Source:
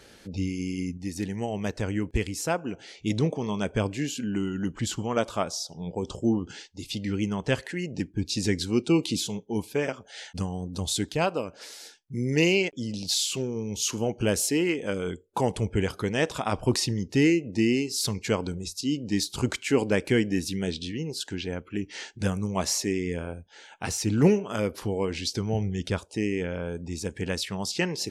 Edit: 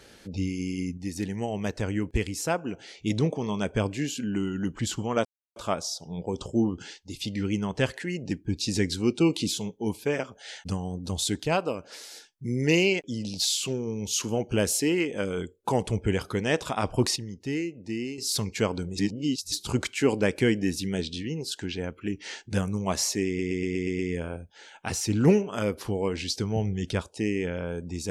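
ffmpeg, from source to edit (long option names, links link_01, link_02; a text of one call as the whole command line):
ffmpeg -i in.wav -filter_complex "[0:a]asplit=12[link_01][link_02][link_03][link_04][link_05][link_06][link_07][link_08][link_09][link_10][link_11][link_12];[link_01]atrim=end=5.25,asetpts=PTS-STARTPTS,afade=type=out:start_time=5.246:duration=0.004:curve=hsin,apad=pad_dur=0.31[link_13];[link_02]atrim=start=5.25:end=16.852,asetpts=PTS-STARTPTS,afade=type=in:duration=0.004:curve=hsin[link_14];[link_03]atrim=start=16.848:end=17.872,asetpts=PTS-STARTPTS,volume=-9dB[link_15];[link_04]atrim=start=17.868:end=18.672[link_16];[link_05]atrim=start=18.668:end=19.212,asetpts=PTS-STARTPTS,areverse[link_17];[link_06]atrim=start=19.208:end=23.082[link_18];[link_07]atrim=start=22.958:end=23.082[link_19];[link_08]atrim=start=22.958:end=23.082[link_20];[link_09]atrim=start=22.958:end=23.082[link_21];[link_10]atrim=start=22.958:end=23.082[link_22];[link_11]atrim=start=22.958:end=23.082[link_23];[link_12]atrim=start=22.958[link_24];[link_13][link_14]concat=n=2:v=0:a=1[link_25];[link_25][link_15]acrossfade=duration=0.004:curve1=hsin:curve2=hsin[link_26];[link_26][link_16]acrossfade=duration=0.004:curve1=hsin:curve2=hsin[link_27];[link_27][link_17]acrossfade=duration=0.004:curve1=hsin:curve2=hsin[link_28];[link_28][link_18]acrossfade=duration=0.004:curve1=hsin:curve2=hsin[link_29];[link_29][link_19]acrossfade=duration=0.004:curve1=hsin:curve2=hsin[link_30];[link_30][link_20]acrossfade=duration=0.004:curve1=hsin:curve2=hsin[link_31];[link_31][link_21]acrossfade=duration=0.004:curve1=hsin:curve2=hsin[link_32];[link_32][link_22]acrossfade=duration=0.004:curve1=hsin:curve2=hsin[link_33];[link_33][link_23]acrossfade=duration=0.004:curve1=hsin:curve2=hsin[link_34];[link_34][link_24]acrossfade=duration=0.004:curve1=hsin:curve2=hsin" out.wav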